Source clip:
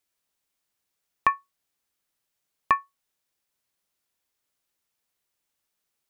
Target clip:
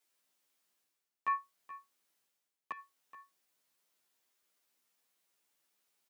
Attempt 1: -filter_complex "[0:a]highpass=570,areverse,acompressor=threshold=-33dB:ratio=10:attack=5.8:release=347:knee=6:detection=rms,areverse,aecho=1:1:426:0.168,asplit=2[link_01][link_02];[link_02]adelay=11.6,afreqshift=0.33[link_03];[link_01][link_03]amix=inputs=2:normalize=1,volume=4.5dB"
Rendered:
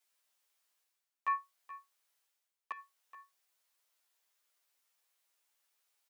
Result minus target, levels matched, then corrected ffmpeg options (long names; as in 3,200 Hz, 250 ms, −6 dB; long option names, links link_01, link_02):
250 Hz band −11.0 dB
-filter_complex "[0:a]highpass=180,areverse,acompressor=threshold=-33dB:ratio=10:attack=5.8:release=347:knee=6:detection=rms,areverse,aecho=1:1:426:0.168,asplit=2[link_01][link_02];[link_02]adelay=11.6,afreqshift=0.33[link_03];[link_01][link_03]amix=inputs=2:normalize=1,volume=4.5dB"